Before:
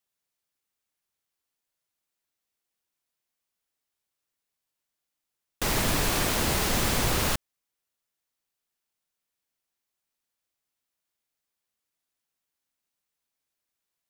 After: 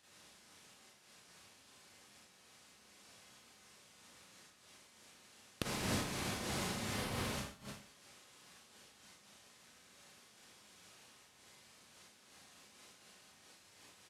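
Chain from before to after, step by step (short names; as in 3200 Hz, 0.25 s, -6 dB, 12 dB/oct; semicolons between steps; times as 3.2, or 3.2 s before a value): G.711 law mismatch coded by mu; careless resampling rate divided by 3×, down none, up hold; 6.89–7.29 bell 6800 Hz -5.5 dB; downsampling 32000 Hz; low shelf 140 Hz +11.5 dB; Schroeder reverb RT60 0.55 s, combs from 30 ms, DRR -8 dB; flipped gate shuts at -20 dBFS, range -26 dB; HPF 110 Hz 12 dB/oct; noise-modulated level, depth 60%; gain +6 dB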